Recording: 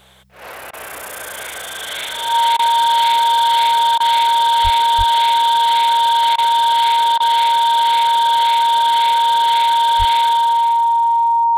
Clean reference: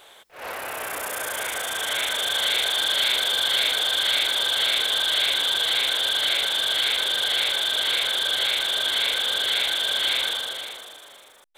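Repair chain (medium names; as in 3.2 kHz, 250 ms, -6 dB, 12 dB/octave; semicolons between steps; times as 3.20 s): de-hum 64.2 Hz, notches 3; band-stop 930 Hz, Q 30; 4.63–4.75 s: high-pass 140 Hz 24 dB/octave; 4.97–5.09 s: high-pass 140 Hz 24 dB/octave; 9.98–10.10 s: high-pass 140 Hz 24 dB/octave; interpolate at 0.71/2.57/3.98/6.36/7.18 s, 20 ms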